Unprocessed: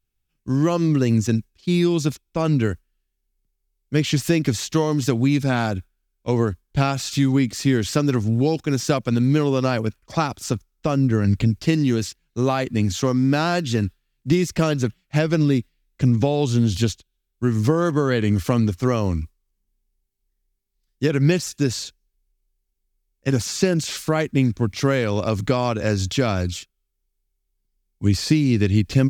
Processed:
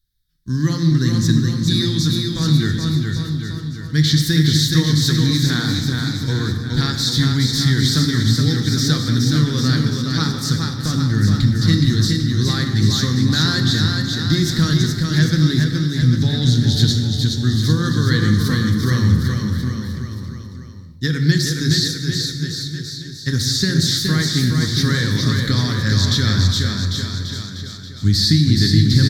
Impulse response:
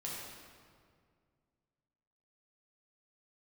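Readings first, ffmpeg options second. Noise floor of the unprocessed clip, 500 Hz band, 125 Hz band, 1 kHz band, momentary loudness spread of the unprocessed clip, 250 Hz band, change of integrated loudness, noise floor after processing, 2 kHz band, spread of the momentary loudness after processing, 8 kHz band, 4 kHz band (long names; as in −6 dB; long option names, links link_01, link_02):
−75 dBFS, −7.0 dB, +6.5 dB, −3.5 dB, 6 LU, +2.0 dB, +4.0 dB, −32 dBFS, +5.0 dB, 9 LU, +6.0 dB, +13.0 dB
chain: -filter_complex "[0:a]firequalizer=gain_entry='entry(110,0);entry(630,-24);entry(1000,-13);entry(1800,3);entry(2600,-21);entry(3700,10);entry(7100,-4);entry(11000,1)':delay=0.05:min_phase=1,aecho=1:1:420|798|1138|1444|1720:0.631|0.398|0.251|0.158|0.1,asplit=2[link_01][link_02];[1:a]atrim=start_sample=2205,afade=type=out:start_time=0.33:duration=0.01,atrim=end_sample=14994[link_03];[link_02][link_03]afir=irnorm=-1:irlink=0,volume=-1dB[link_04];[link_01][link_04]amix=inputs=2:normalize=0,volume=1dB"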